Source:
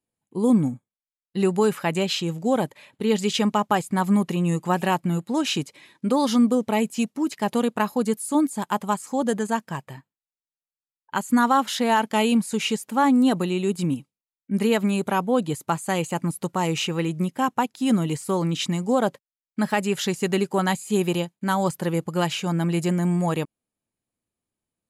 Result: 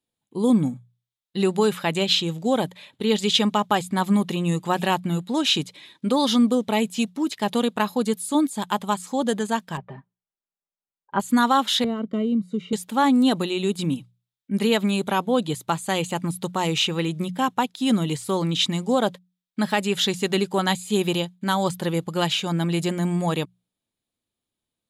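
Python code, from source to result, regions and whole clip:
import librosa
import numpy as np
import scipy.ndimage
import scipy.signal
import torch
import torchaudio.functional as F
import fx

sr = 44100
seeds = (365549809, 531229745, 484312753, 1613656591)

y = fx.chain(x, sr, fx.lowpass(hz=1200.0, slope=12),
    fx.comb(ms=5.0, depth=0.94), at=(9.77, 11.2))
y = fx.chain(y, sr, fx.moving_average(points=52),
    fx.band_squash(depth_pct=70), at=(11.84, 12.73))
y = fx.peak_eq(y, sr, hz=3600.0, db=10.5, octaves=0.51)
y = fx.hum_notches(y, sr, base_hz=60, count=3)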